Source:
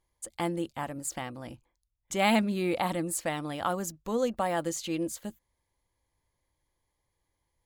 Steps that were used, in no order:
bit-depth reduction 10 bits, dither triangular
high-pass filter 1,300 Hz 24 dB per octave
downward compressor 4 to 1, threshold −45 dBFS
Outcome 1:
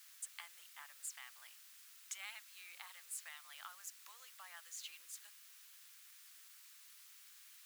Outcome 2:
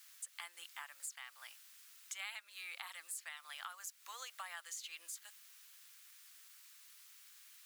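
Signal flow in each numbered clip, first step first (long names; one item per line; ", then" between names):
downward compressor, then bit-depth reduction, then high-pass filter
bit-depth reduction, then high-pass filter, then downward compressor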